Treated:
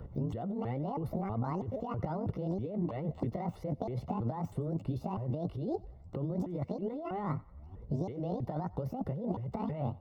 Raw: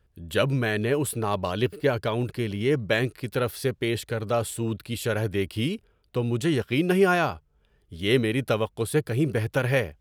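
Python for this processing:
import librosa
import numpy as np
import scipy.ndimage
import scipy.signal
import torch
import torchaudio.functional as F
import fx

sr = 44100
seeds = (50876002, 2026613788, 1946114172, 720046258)

p1 = fx.pitch_ramps(x, sr, semitones=12.0, every_ms=323)
p2 = fx.low_shelf(p1, sr, hz=190.0, db=10.0)
p3 = fx.over_compress(p2, sr, threshold_db=-31.0, ratio=-1.0)
p4 = scipy.signal.savgol_filter(p3, 65, 4, mode='constant')
p5 = p4 + fx.echo_thinned(p4, sr, ms=91, feedback_pct=41, hz=500.0, wet_db=-21.5, dry=0)
p6 = fx.band_squash(p5, sr, depth_pct=70)
y = p6 * librosa.db_to_amplitude(-4.5)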